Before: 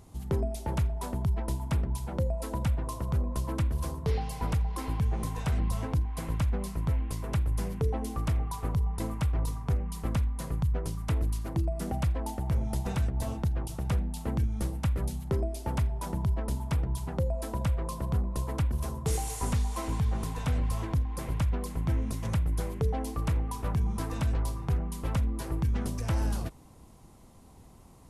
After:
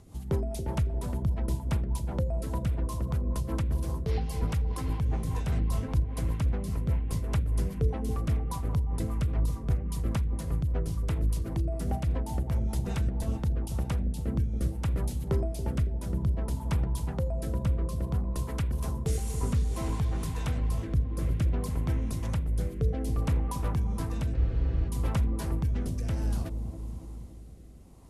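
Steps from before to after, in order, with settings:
in parallel at −11 dB: soft clipping −32.5 dBFS, distortion −8 dB
on the sum: bucket-brigade delay 278 ms, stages 1,024, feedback 60%, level −8 dB
rotating-speaker cabinet horn 5 Hz, later 0.6 Hz, at 0:13.05
frozen spectrum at 0:24.38, 0.51 s

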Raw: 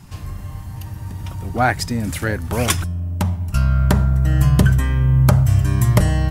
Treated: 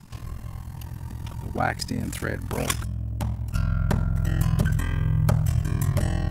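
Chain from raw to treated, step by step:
in parallel at −2 dB: downward compressor, threshold −21 dBFS, peak gain reduction 13 dB
0:02.58–0:03.49: on the sum: surface crackle 30 per second −35 dBFS
ring modulation 21 Hz
0:04.16–0:05.52: one half of a high-frequency compander encoder only
level −7.5 dB

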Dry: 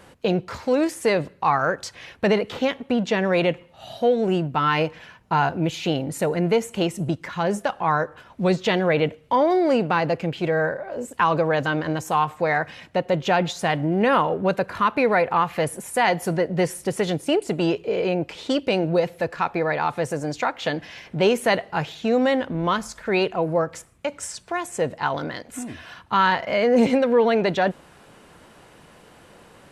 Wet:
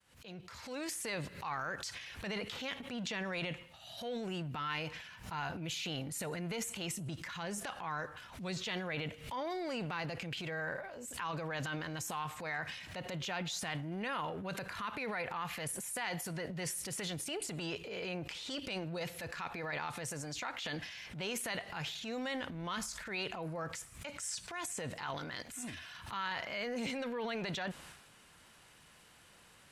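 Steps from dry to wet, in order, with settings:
fade in at the beginning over 1.01 s
guitar amp tone stack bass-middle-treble 5-5-5
downward compressor, threshold −36 dBFS, peak gain reduction 9 dB
transient designer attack −6 dB, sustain +9 dB
background raised ahead of every attack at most 100 dB per second
level +1.5 dB

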